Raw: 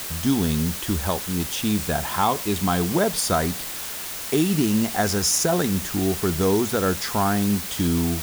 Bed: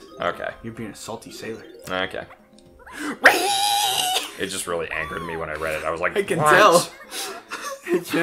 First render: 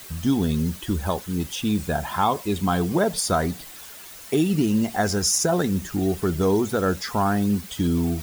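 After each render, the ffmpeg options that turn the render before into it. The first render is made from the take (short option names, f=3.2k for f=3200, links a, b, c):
-af "afftdn=nr=11:nf=-32"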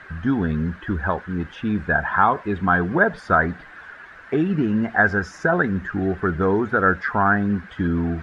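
-af "lowpass=f=1.6k:t=q:w=5.5"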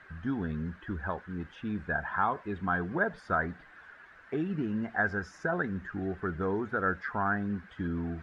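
-af "volume=-11.5dB"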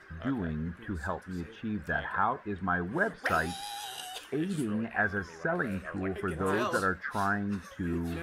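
-filter_complex "[1:a]volume=-19.5dB[a];[0:a][a]amix=inputs=2:normalize=0"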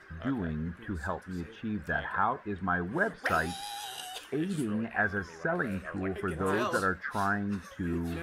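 -af anull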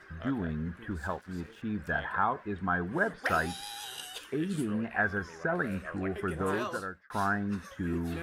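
-filter_complex "[0:a]asettb=1/sr,asplit=3[a][b][c];[a]atrim=end=0.914[d];[b]atrim=start=0.91:end=1.62,asetpts=PTS-STARTPTS,afade=t=in:d=0.004:c=qsin,afade=t=out:st=0.706:d=0.004:c=qsin,aeval=exprs='sgn(val(0))*max(abs(val(0))-0.00178,0)':c=same[e];[c]atrim=start=1.616[f];[d][e]acrossfade=d=0.004:c1=hsin:c2=qsin[g];[g][f]acrossfade=d=0.004:c1=qsin:c2=hsin,asettb=1/sr,asplit=3[h][i][j];[h]atrim=end=3.524[k];[i]atrim=start=3.52:end=4.56,asetpts=PTS-STARTPTS,afade=t=in:d=0.004:c=qsin,afade=t=out:st=1.036:d=0.004:c=qsin,equalizer=f=730:t=o:w=0.38:g=-9[l];[j]atrim=start=4.556[m];[k][l]acrossfade=d=0.004:c1=hsin:c2=qsin[n];[n][m]acrossfade=d=0.004:c1=qsin:c2=hsin,asplit=2[o][p];[o]atrim=end=7.1,asetpts=PTS-STARTPTS,afade=t=out:st=6.4:d=0.7[q];[p]atrim=start=7.1,asetpts=PTS-STARTPTS,afade=t=in:d=0.004:c=hsin[r];[q][r]concat=n=2:v=0:a=1"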